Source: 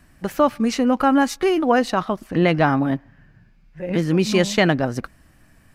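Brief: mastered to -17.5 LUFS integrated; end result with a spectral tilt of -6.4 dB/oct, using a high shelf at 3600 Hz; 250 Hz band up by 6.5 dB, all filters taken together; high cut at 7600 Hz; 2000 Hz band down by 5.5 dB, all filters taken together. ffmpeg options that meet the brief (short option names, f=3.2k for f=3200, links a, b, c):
-af "lowpass=7.6k,equalizer=f=250:t=o:g=8,equalizer=f=2k:t=o:g=-5,highshelf=f=3.6k:g=-8,volume=-1.5dB"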